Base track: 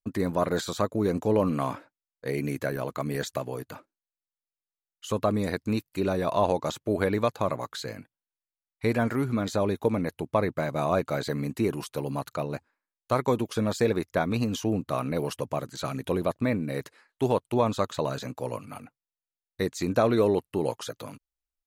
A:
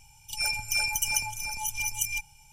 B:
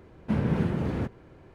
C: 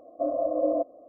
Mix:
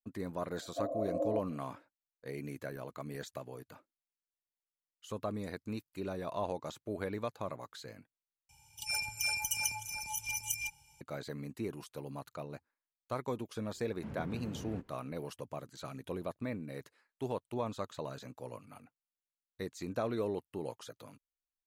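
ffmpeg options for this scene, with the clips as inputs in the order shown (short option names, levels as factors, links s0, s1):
-filter_complex "[0:a]volume=0.237[s0];[1:a]highpass=60[s1];[2:a]alimiter=limit=0.112:level=0:latency=1:release=110[s2];[s0]asplit=2[s3][s4];[s3]atrim=end=8.494[s5];[s1]atrim=end=2.52,asetpts=PTS-STARTPTS,volume=0.473[s6];[s4]atrim=start=11.006[s7];[3:a]atrim=end=1.08,asetpts=PTS-STARTPTS,volume=0.335,afade=t=in:d=0.004:c=hsin,afade=t=out:st=1.076:d=0.004:c=hsin,adelay=570[s8];[s2]atrim=end=1.54,asetpts=PTS-STARTPTS,volume=0.168,afade=t=in:d=0.004:c=hsin,afade=t=out:st=1.536:d=0.004:c=hsin,adelay=13740[s9];[s5][s6]acrossfade=d=0.004:c1=hsin:c2=hsin[s10];[s10][s7]acrossfade=d=0.004:c1=hsin:c2=hsin[s11];[s11][s8][s9]amix=inputs=3:normalize=0"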